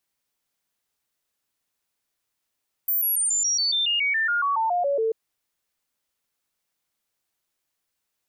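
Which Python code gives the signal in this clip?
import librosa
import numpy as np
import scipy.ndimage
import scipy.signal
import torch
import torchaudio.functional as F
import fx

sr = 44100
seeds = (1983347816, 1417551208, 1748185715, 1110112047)

y = fx.stepped_sweep(sr, from_hz=14300.0, direction='down', per_octave=3, tones=16, dwell_s=0.14, gap_s=0.0, level_db=-20.0)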